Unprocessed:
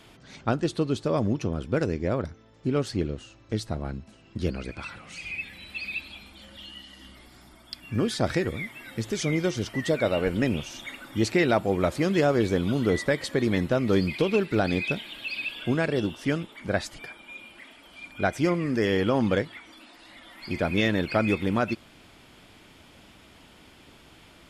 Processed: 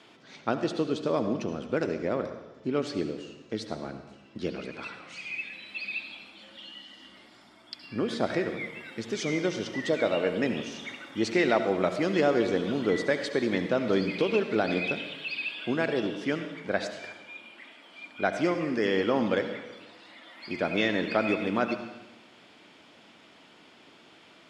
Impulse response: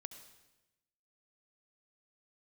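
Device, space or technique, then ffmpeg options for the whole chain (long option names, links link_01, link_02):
supermarket ceiling speaker: -filter_complex "[0:a]asettb=1/sr,asplit=3[link_01][link_02][link_03];[link_01]atrim=end=7.864[link_04];[link_02]atrim=start=7.86:end=8.6,asetpts=PTS-STARTPTS,afade=type=in:duration=0.004:curve=qsin,afade=type=out:start_time=0.736:duration=0.004:curve=qsin,equalizer=frequency=6200:width_type=o:width=1.8:gain=-5.5[link_05];[link_03]atrim=start=8.596[link_06];[link_04][link_05]acrossfade=duration=0.004:curve1=hsin:curve2=qsin[link_07];[link_07][link_06]acrossfade=duration=0.004:curve1=qsin:curve2=hsin,highpass=230,lowpass=5900[link_08];[1:a]atrim=start_sample=2205[link_09];[link_08][link_09]afir=irnorm=-1:irlink=0,volume=4dB"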